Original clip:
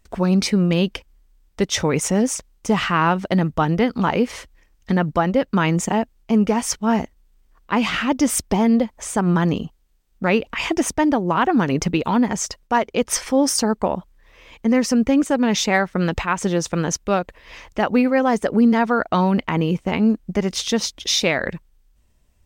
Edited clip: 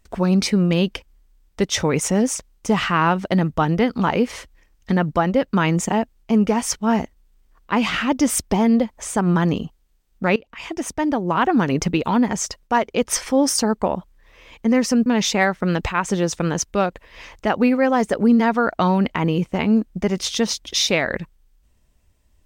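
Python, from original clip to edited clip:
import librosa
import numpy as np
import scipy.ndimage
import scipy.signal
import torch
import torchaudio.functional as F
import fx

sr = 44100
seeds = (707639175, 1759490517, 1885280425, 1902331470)

y = fx.edit(x, sr, fx.fade_in_from(start_s=10.36, length_s=1.07, floor_db=-20.5),
    fx.cut(start_s=15.06, length_s=0.33), tone=tone)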